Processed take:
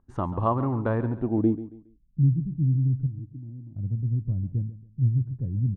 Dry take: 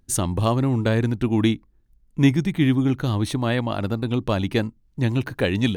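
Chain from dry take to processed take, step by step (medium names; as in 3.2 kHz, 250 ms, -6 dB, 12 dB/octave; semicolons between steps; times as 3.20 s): 3.06–3.76 s: cascade formant filter u; low-pass sweep 1.1 kHz -> 130 Hz, 0.99–2.25 s; feedback delay 138 ms, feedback 31%, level -15 dB; trim -6 dB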